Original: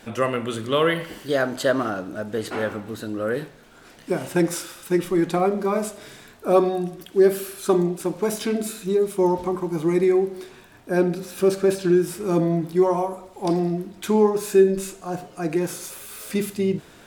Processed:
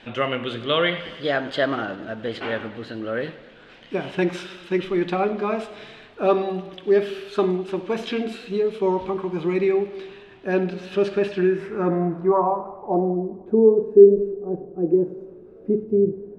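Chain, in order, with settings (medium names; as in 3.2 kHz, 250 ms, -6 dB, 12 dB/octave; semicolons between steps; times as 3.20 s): speed mistake 24 fps film run at 25 fps; low-pass sweep 3.1 kHz -> 400 Hz, 11.15–13.56 s; modulated delay 99 ms, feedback 68%, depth 77 cents, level -18 dB; trim -2 dB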